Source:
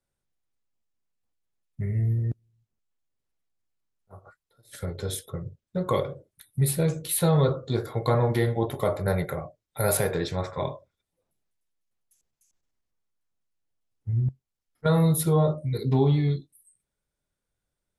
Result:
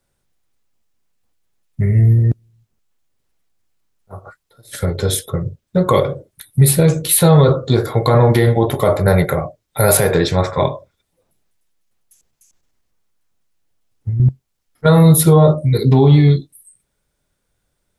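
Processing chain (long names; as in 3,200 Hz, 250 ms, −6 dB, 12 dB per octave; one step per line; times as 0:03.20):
0:10.66–0:14.20: downward compressor 12 to 1, threshold −31 dBFS, peak gain reduction 10.5 dB
boost into a limiter +14.5 dB
level −1 dB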